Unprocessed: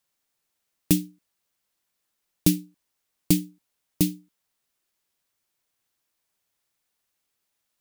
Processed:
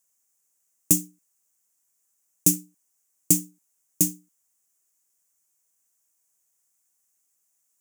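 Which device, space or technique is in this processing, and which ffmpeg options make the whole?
budget condenser microphone: -af "highpass=99,highshelf=f=5.3k:t=q:w=3:g=10,volume=-4.5dB"

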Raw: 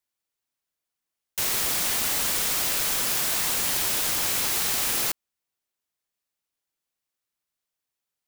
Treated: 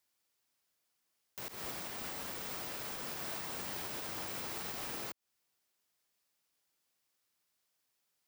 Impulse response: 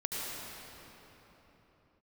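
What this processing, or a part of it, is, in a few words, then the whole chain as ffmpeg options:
broadcast voice chain: -filter_complex "[0:a]asettb=1/sr,asplit=3[a][b][c];[a]atrim=end=1.484[d];[b]atrim=start=1.48:end=3.13,asetpts=PTS-STARTPTS,afade=t=in:d=0.004:c=qsin,afade=t=out:st=1.646:d=0.004:c=qsin,agate=range=-33dB:threshold=-17dB:ratio=3:detection=peak[e];[c]atrim=start=3.126[f];[d][e]acrossfade=d=0.004:c1=hsin:c2=qsin[g];[g][f]acrossfade=d=0.004:c1=qsin:c2=hsin,highpass=f=80:p=1,deesser=0.8,acompressor=threshold=-41dB:ratio=3,equalizer=f=5k:t=o:w=0.3:g=3,alimiter=level_in=11.5dB:limit=-24dB:level=0:latency=1:release=236,volume=-11.5dB,volume=4.5dB"

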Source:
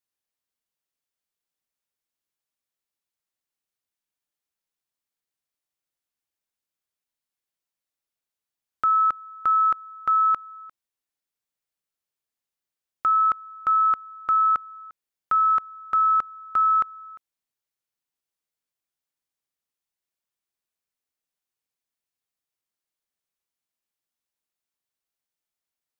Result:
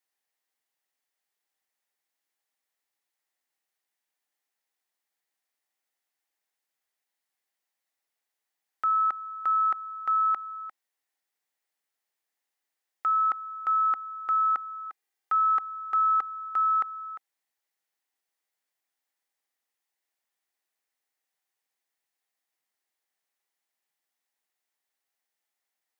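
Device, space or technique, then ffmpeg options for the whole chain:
laptop speaker: -filter_complex "[0:a]highpass=290,equalizer=f=790:t=o:w=0.3:g=7,equalizer=f=1.9k:t=o:w=0.36:g=7.5,alimiter=limit=-23dB:level=0:latency=1:release=25,asettb=1/sr,asplit=3[a][b][c];[a]atrim=end=14.864[d];[b]atrim=start=14.86:end=16.49,asetpts=PTS-STARTPTS,afade=t=in:d=0.004:c=qsin,afade=t=out:st=1.626:d=0.004:c=qsin,aecho=1:1:2.5:0.45,atrim=end_sample=71883[e];[c]atrim=start=16.486[f];[d][e]acrossfade=d=0.004:c1=hsin:c2=qsin[g];[g][f]acrossfade=d=0.004:c1=qsin:c2=hsin,volume=2.5dB"

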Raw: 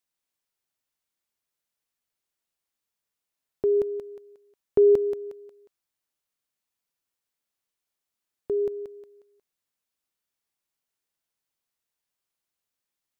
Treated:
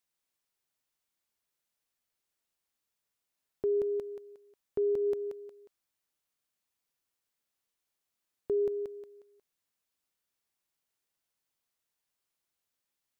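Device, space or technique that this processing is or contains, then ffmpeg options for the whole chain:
stacked limiters: -af "alimiter=limit=-18.5dB:level=0:latency=1:release=262,alimiter=level_in=0.5dB:limit=-24dB:level=0:latency=1:release=12,volume=-0.5dB"

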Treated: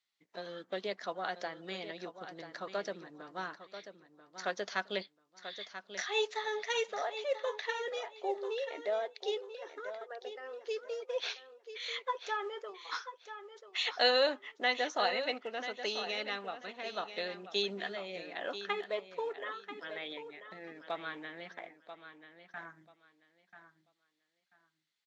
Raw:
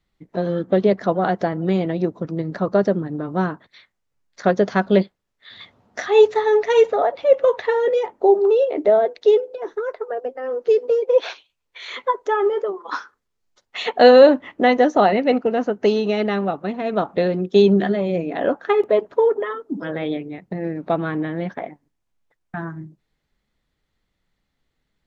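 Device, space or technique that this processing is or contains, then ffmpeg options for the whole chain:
piezo pickup straight into a mixer: -af "lowpass=5.5k,aderivative,lowshelf=f=130:g=-4.5,aecho=1:1:988|1976|2964:0.282|0.0592|0.0124,volume=2.5dB"

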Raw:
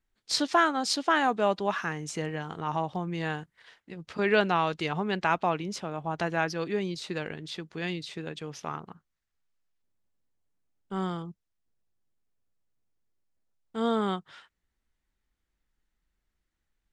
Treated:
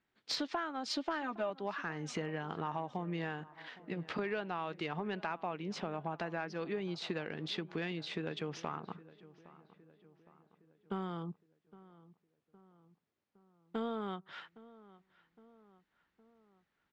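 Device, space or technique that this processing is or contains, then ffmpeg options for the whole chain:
AM radio: -filter_complex "[0:a]asettb=1/sr,asplit=3[a][b][c];[a]atrim=end=0.854[d];[b]atrim=start=0.85:end=1.5,asetpts=PTS-STARTPTS,afade=t=in:d=0.004:c=qsin,afade=t=out:st=0.646:d=0.004:c=qsin,aecho=1:1:3.3:0.92,atrim=end_sample=28665[e];[c]atrim=start=1.496[f];[d][e]acrossfade=d=0.004:c1=hsin:c2=qsin[g];[g][f]acrossfade=d=0.004:c1=qsin:c2=hsin,highpass=140,lowpass=3.6k,acompressor=threshold=-39dB:ratio=8,asoftclip=type=tanh:threshold=-27.5dB,asplit=2[h][i];[i]adelay=813,lowpass=f=2.1k:p=1,volume=-19dB,asplit=2[j][k];[k]adelay=813,lowpass=f=2.1k:p=1,volume=0.55,asplit=2[l][m];[m]adelay=813,lowpass=f=2.1k:p=1,volume=0.55,asplit=2[n][o];[o]adelay=813,lowpass=f=2.1k:p=1,volume=0.55,asplit=2[p][q];[q]adelay=813,lowpass=f=2.1k:p=1,volume=0.55[r];[h][j][l][n][p][r]amix=inputs=6:normalize=0,volume=5dB"

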